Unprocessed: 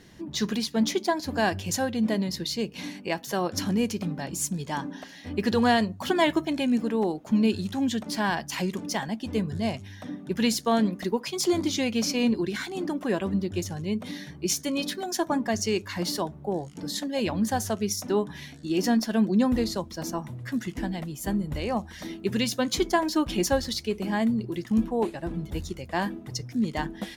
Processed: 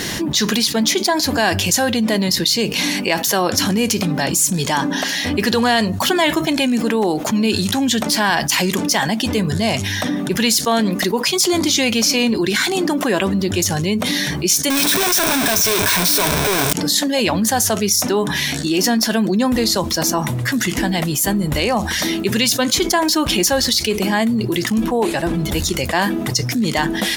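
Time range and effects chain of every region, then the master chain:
14.70–16.73 s: one-bit comparator + rippled EQ curve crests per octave 1.6, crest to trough 7 dB
whole clip: tilt EQ +2 dB/octave; level flattener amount 70%; trim +5 dB

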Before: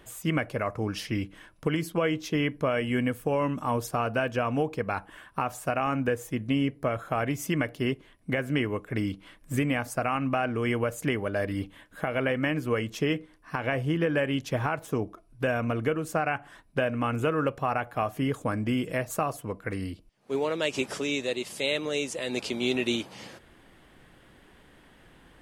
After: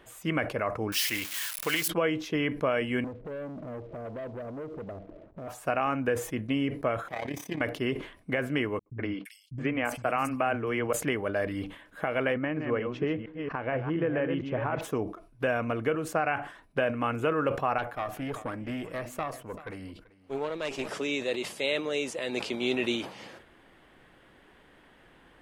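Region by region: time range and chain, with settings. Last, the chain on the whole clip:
0.92–1.88 s: zero-crossing glitches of -27 dBFS + tilt shelf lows -9.5 dB, about 690 Hz
3.04–5.48 s: Chebyshev low-pass 670 Hz, order 8 + compression, threshold -41 dBFS + waveshaping leveller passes 3
7.08–7.61 s: comb filter that takes the minimum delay 0.33 ms + comb of notches 1.4 kHz + AM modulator 34 Hz, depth 60%
8.79–10.93 s: band-stop 3.7 kHz, Q 11 + gate -42 dBFS, range -58 dB + three bands offset in time lows, mids, highs 70/340 ms, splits 180/4300 Hz
12.34–14.81 s: chunks repeated in reverse 230 ms, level -5.5 dB + tape spacing loss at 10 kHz 30 dB
17.78–20.89 s: valve stage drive 22 dB, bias 0.75 + delay 387 ms -20 dB
whole clip: tone controls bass -6 dB, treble -7 dB; decay stretcher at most 110 dB/s

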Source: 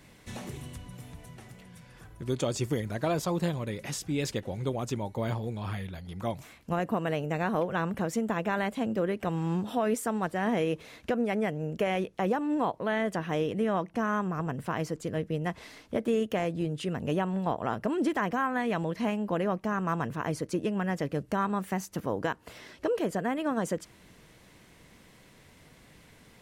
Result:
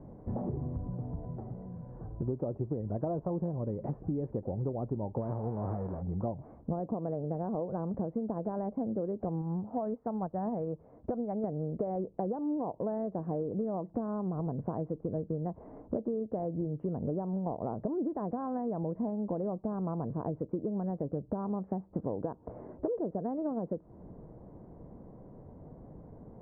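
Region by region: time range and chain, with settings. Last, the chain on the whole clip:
5.20–6.01 s: formants flattened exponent 0.3 + peaking EQ 3.8 kHz -9.5 dB 0.94 oct
9.41–11.44 s: dynamic bell 350 Hz, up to -8 dB, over -42 dBFS, Q 0.83 + upward expansion, over -44 dBFS
whole clip: inverse Chebyshev low-pass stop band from 3.5 kHz, stop band 70 dB; compression 12:1, threshold -38 dBFS; trim +8 dB

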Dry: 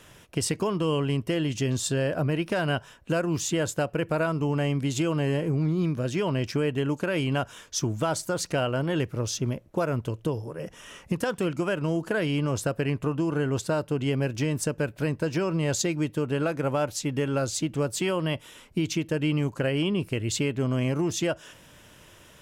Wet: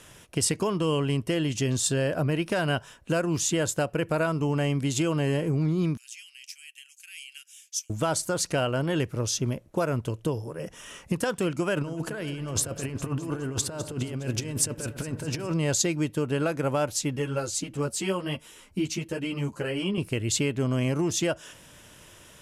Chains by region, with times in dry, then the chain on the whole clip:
5.97–7.90 s: steep high-pass 2.5 kHz + peaking EQ 3.8 kHz -11.5 dB 0.96 oct
11.76–15.54 s: compressor with a negative ratio -30 dBFS, ratio -0.5 + echo whose repeats swap between lows and highs 103 ms, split 1.5 kHz, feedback 74%, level -11 dB
17.16–19.98 s: band-stop 3.5 kHz, Q 18 + three-phase chorus
whole clip: low-pass 12 kHz 24 dB/octave; treble shelf 7.2 kHz +8.5 dB

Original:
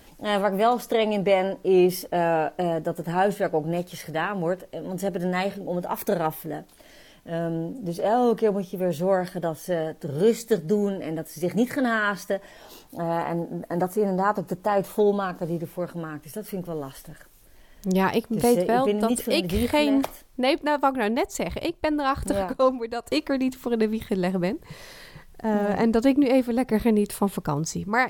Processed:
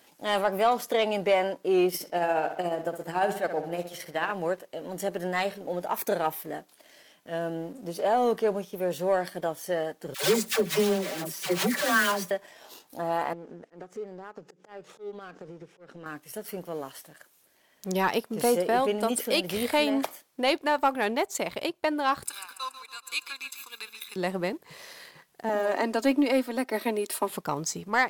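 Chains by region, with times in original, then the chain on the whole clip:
1.88–4.32 s: tremolo 14 Hz, depth 49% + filtered feedback delay 63 ms, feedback 55%, low-pass 3.9 kHz, level -10 dB
10.14–12.31 s: block-companded coder 3-bit + comb 5.2 ms, depth 72% + phase dispersion lows, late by 95 ms, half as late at 620 Hz
13.33–16.06 s: compression, threshold -35 dBFS + slow attack 104 ms + cabinet simulation 130–6500 Hz, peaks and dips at 150 Hz +7 dB, 430 Hz +7 dB, 640 Hz -6 dB, 1 kHz -8 dB, 4.3 kHz -6 dB
22.25–24.16 s: Bessel high-pass 2.6 kHz + comb 0.8 ms, depth 98% + feedback delay 142 ms, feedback 59%, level -10.5 dB
25.49–27.30 s: steep high-pass 240 Hz + comb 3.2 ms, depth 48%
whole clip: high-pass 150 Hz 12 dB/octave; bass shelf 340 Hz -10.5 dB; waveshaping leveller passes 1; trim -3 dB

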